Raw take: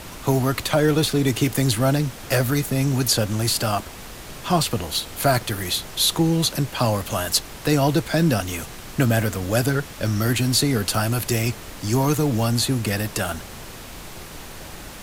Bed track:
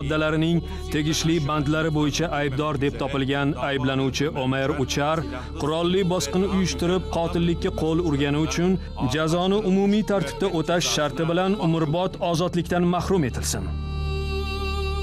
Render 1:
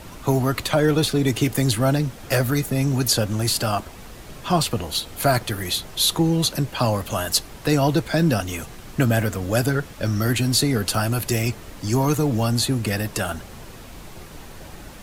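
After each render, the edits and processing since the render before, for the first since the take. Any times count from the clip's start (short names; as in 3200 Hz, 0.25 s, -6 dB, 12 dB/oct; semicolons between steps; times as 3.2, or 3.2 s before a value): denoiser 6 dB, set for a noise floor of -38 dBFS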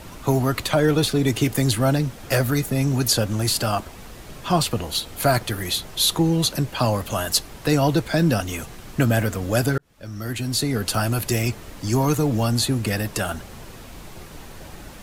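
9.78–11.02 fade in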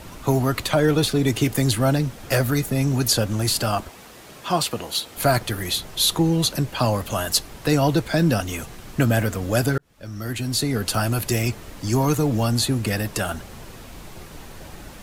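3.89–5.17 HPF 290 Hz 6 dB/oct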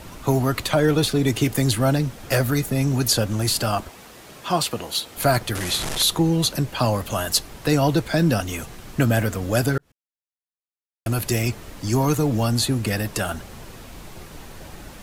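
5.55–6.03 delta modulation 64 kbps, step -20.5 dBFS; 9.92–11.06 mute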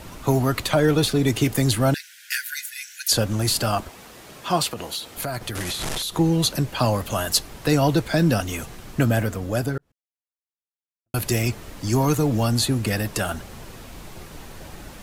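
1.94–3.12 brick-wall FIR high-pass 1400 Hz; 4.67–6.16 compressor, threshold -25 dBFS; 8.65–11.14 studio fade out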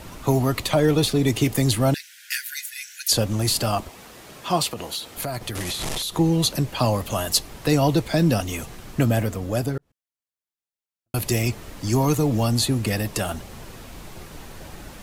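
dynamic EQ 1500 Hz, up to -7 dB, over -46 dBFS, Q 4.2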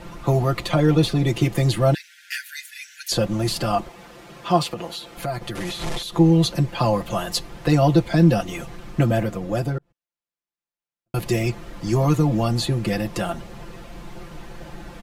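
LPF 2600 Hz 6 dB/oct; comb 5.8 ms, depth 78%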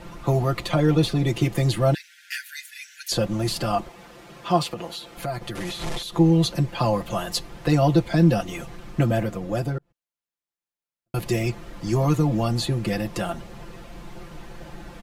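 gain -2 dB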